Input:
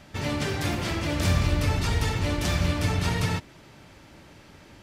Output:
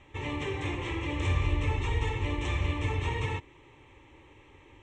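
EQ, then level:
linear-phase brick-wall low-pass 8,800 Hz
high-frequency loss of the air 71 metres
phaser with its sweep stopped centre 980 Hz, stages 8
−1.5 dB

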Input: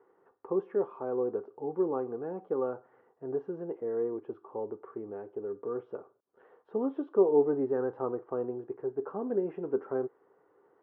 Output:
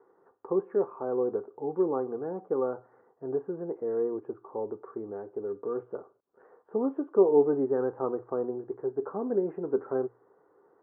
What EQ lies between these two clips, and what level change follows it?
low-pass filter 1,700 Hz 24 dB per octave
mains-hum notches 60/120 Hz
+2.5 dB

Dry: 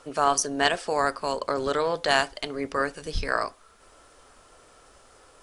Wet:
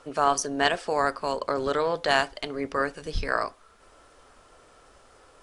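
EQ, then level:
high-shelf EQ 5,700 Hz −7 dB
0.0 dB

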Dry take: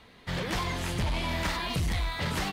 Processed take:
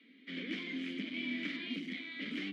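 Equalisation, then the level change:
formant filter i
Butterworth high-pass 180 Hz 72 dB per octave
parametric band 10,000 Hz −9.5 dB 1.4 octaves
+6.0 dB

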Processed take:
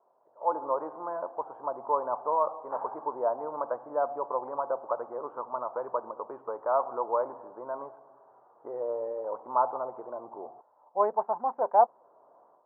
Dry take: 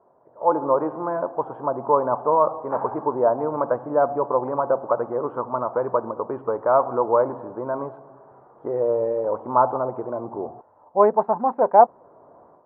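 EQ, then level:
resonant band-pass 900 Hz, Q 1
−7.0 dB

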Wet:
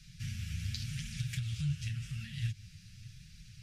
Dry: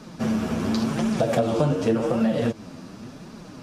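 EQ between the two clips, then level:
inverse Chebyshev band-stop filter 270–1,000 Hz, stop band 50 dB
low-shelf EQ 120 Hz +10 dB
−7.0 dB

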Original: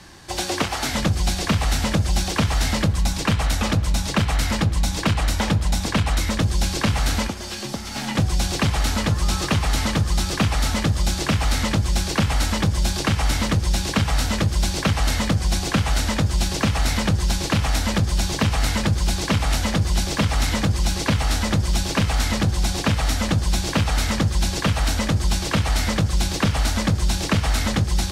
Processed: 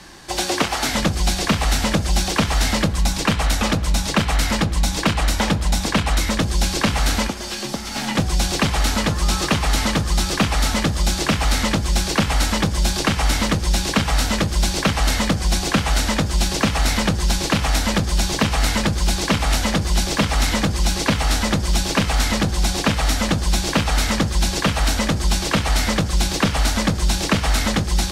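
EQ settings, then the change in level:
parametric band 98 Hz −9 dB 0.87 octaves
+3.5 dB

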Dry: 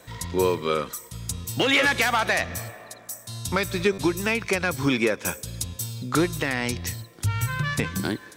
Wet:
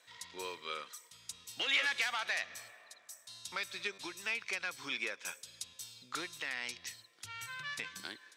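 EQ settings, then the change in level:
resonant band-pass 3,400 Hz, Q 0.72
−8.5 dB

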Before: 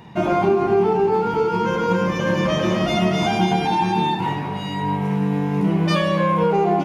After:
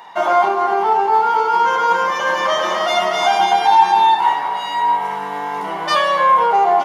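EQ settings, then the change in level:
high-pass with resonance 860 Hz, resonance Q 1.7
notch filter 2,500 Hz, Q 6.2
+5.5 dB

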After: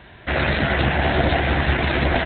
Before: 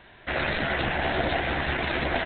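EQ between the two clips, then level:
high-pass filter 51 Hz
low-shelf EQ 180 Hz +10 dB
+5.0 dB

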